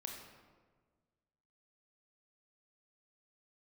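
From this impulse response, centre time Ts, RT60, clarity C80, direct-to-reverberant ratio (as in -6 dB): 52 ms, 1.5 s, 5.0 dB, 1.0 dB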